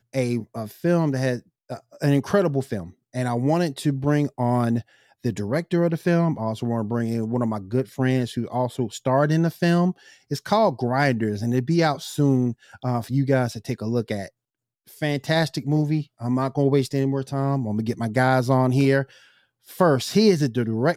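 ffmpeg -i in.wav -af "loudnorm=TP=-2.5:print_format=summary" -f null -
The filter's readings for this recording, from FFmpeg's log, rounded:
Input Integrated:    -22.6 LUFS
Input True Peak:      -5.6 dBTP
Input LRA:             3.4 LU
Input Threshold:     -33.0 LUFS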